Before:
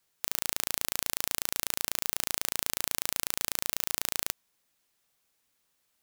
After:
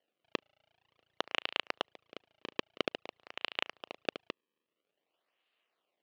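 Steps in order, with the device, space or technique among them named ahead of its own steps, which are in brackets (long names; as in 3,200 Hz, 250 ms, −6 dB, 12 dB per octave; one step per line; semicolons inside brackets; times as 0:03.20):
inverse Chebyshev band-stop filter 290–5,000 Hz, stop band 50 dB
circuit-bent sampling toy (sample-and-hold swept by an LFO 35×, swing 160% 0.5 Hz; loudspeaker in its box 460–4,500 Hz, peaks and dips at 910 Hz −6 dB, 1,500 Hz −5 dB, 2,900 Hz +9 dB)
level −3 dB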